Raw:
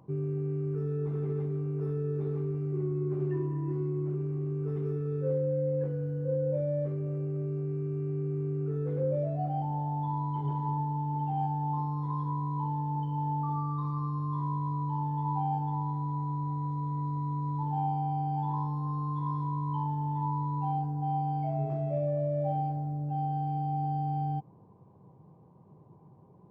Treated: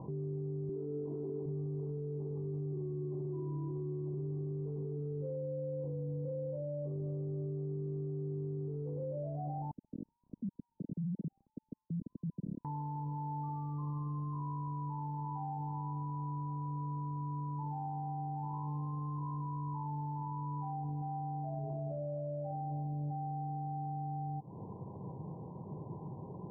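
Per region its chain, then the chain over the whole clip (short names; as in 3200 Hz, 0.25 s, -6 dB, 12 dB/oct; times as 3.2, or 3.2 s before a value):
0.69–1.46 HPF 250 Hz + low shelf 350 Hz +10.5 dB + comb 3 ms, depth 51%
9.71–12.65 sine-wave speech + inverse Chebyshev low-pass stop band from 770 Hz, stop band 60 dB
whole clip: elliptic low-pass 1000 Hz, stop band 40 dB; compressor, threshold -42 dBFS; limiter -44.5 dBFS; gain +12 dB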